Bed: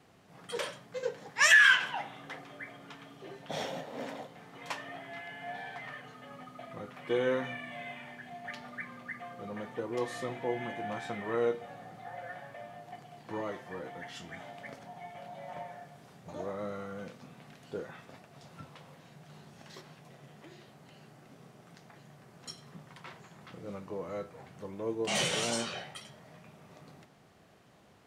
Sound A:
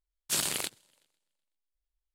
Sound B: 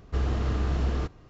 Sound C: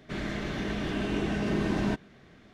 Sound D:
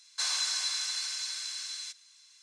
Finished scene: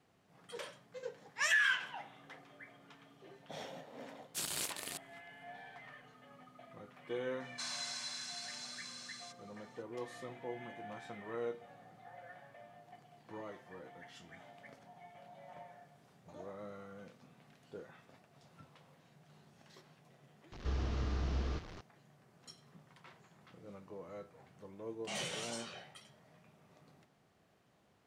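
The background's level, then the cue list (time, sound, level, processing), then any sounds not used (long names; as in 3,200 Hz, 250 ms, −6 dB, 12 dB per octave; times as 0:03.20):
bed −10 dB
0:04.05: mix in A −10.5 dB + delay that plays each chunk backwards 231 ms, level −1 dB
0:07.40: mix in D −6 dB + high-shelf EQ 2,100 Hz −7 dB
0:20.52: mix in B −9.5 dB + linear delta modulator 32 kbit/s, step −34.5 dBFS
not used: C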